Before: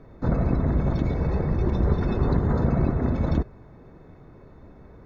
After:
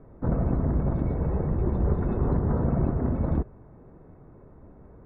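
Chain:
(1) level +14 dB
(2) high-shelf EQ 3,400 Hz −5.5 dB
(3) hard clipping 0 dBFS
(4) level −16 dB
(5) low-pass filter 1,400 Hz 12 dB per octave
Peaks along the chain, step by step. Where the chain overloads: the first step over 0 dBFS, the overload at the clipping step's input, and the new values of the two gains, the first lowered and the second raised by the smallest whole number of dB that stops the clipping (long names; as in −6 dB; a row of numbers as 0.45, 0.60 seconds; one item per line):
+5.0, +5.0, 0.0, −16.0, −16.0 dBFS
step 1, 5.0 dB
step 1 +9 dB, step 4 −11 dB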